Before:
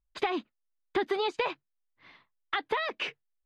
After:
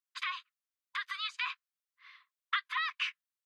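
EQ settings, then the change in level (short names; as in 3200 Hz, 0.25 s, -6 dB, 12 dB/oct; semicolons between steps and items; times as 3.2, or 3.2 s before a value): brick-wall FIR high-pass 1000 Hz; 0.0 dB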